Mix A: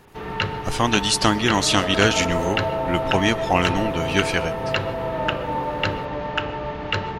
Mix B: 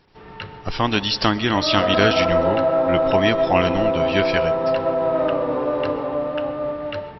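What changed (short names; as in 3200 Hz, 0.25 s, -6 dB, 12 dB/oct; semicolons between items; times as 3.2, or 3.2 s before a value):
first sound -10.0 dB; second sound +8.0 dB; master: add brick-wall FIR low-pass 5700 Hz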